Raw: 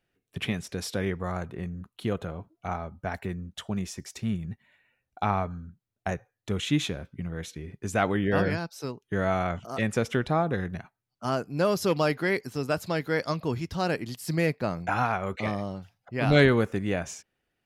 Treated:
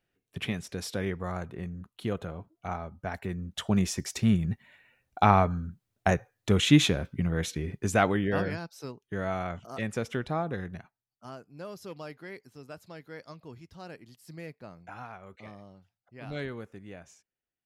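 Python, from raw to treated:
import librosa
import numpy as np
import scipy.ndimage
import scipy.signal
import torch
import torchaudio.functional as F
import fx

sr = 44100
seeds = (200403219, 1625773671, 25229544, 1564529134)

y = fx.gain(x, sr, db=fx.line((3.2, -2.5), (3.75, 6.0), (7.71, 6.0), (8.48, -5.5), (10.78, -5.5), (11.39, -17.0)))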